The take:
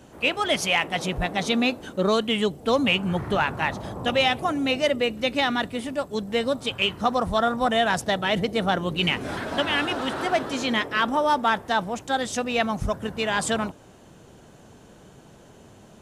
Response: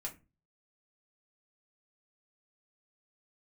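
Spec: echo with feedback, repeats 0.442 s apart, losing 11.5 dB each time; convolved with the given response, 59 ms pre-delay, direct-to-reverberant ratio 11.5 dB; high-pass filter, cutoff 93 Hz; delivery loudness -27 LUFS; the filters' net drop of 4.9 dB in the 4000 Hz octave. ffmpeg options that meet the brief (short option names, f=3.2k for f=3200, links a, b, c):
-filter_complex "[0:a]highpass=93,equalizer=f=4k:t=o:g=-7.5,aecho=1:1:442|884|1326:0.266|0.0718|0.0194,asplit=2[a][b];[1:a]atrim=start_sample=2205,adelay=59[c];[b][c]afir=irnorm=-1:irlink=0,volume=-10.5dB[d];[a][d]amix=inputs=2:normalize=0,volume=-2.5dB"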